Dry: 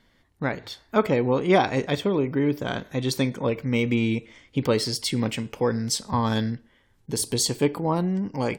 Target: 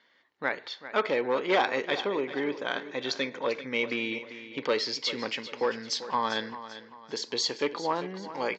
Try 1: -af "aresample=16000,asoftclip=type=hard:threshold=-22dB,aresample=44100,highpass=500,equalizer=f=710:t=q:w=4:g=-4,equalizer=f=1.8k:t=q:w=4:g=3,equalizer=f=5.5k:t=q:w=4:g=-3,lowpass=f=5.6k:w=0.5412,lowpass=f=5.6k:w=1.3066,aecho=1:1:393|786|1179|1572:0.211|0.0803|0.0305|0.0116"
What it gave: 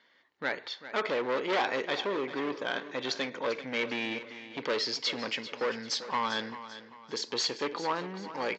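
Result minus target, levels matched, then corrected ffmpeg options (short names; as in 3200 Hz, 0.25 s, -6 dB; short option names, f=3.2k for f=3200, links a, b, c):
hard clip: distortion +9 dB
-af "aresample=16000,asoftclip=type=hard:threshold=-15dB,aresample=44100,highpass=500,equalizer=f=710:t=q:w=4:g=-4,equalizer=f=1.8k:t=q:w=4:g=3,equalizer=f=5.5k:t=q:w=4:g=-3,lowpass=f=5.6k:w=0.5412,lowpass=f=5.6k:w=1.3066,aecho=1:1:393|786|1179|1572:0.211|0.0803|0.0305|0.0116"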